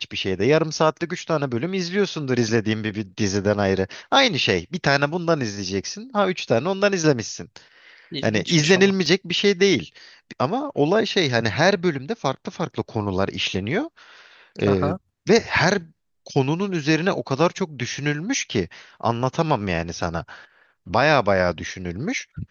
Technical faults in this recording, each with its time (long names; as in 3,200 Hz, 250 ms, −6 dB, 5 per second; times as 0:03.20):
0:09.06: drop-out 2 ms